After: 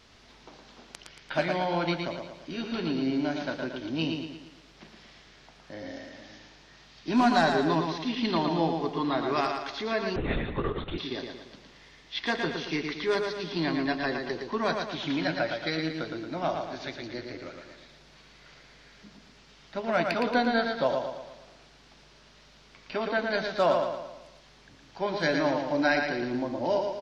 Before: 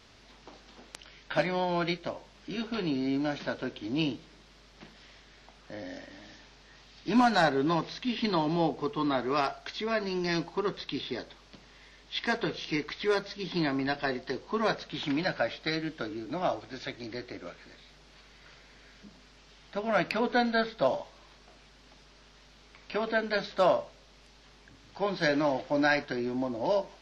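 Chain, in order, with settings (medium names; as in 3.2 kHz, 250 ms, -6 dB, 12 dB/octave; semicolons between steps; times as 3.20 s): feedback delay 114 ms, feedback 47%, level -5 dB; 10.16–10.98 s: LPC vocoder at 8 kHz whisper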